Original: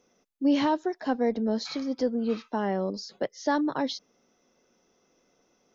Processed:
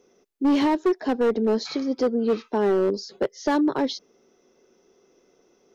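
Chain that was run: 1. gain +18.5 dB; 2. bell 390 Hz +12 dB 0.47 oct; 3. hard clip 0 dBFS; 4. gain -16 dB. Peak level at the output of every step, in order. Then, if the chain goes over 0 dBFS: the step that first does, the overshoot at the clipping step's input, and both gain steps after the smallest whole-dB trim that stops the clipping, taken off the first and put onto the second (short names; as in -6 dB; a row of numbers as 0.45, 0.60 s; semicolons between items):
+4.0, +8.0, 0.0, -16.0 dBFS; step 1, 8.0 dB; step 1 +10.5 dB, step 4 -8 dB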